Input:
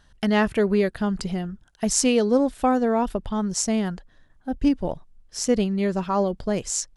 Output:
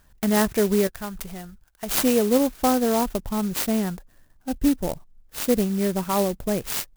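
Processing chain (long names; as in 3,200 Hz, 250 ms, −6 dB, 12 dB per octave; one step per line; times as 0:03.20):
0:00.87–0:02.03: parametric band 250 Hz −12 dB 2.4 octaves
converter with an unsteady clock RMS 0.079 ms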